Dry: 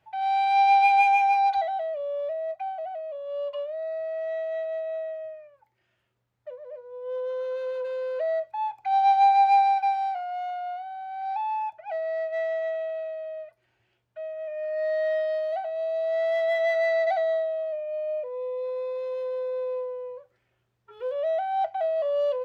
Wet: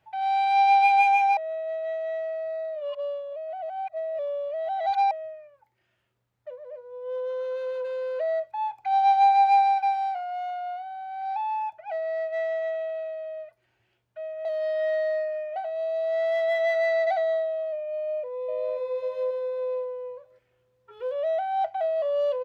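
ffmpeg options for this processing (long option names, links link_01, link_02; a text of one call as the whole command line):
ffmpeg -i in.wav -filter_complex "[0:a]asplit=2[link_01][link_02];[link_02]afade=type=in:start_time=17.94:duration=0.01,afade=type=out:start_time=18.76:duration=0.01,aecho=0:1:540|1080|1620|2160:0.668344|0.167086|0.0417715|0.0104429[link_03];[link_01][link_03]amix=inputs=2:normalize=0,asplit=5[link_04][link_05][link_06][link_07][link_08];[link_04]atrim=end=1.372[link_09];[link_05]atrim=start=1.368:end=5.112,asetpts=PTS-STARTPTS,areverse[link_10];[link_06]atrim=start=5.108:end=14.452[link_11];[link_07]atrim=start=14.448:end=15.562,asetpts=PTS-STARTPTS,areverse[link_12];[link_08]atrim=start=15.558[link_13];[link_09][link_10]acrossfade=duration=0.004:curve1=hsin:curve2=hsin[link_14];[link_14][link_11]acrossfade=duration=0.004:curve1=hsin:curve2=hsin[link_15];[link_15][link_12]acrossfade=duration=0.004:curve1=hsin:curve2=hsin[link_16];[link_16][link_13]acrossfade=duration=0.004:curve1=hsin:curve2=hsin" out.wav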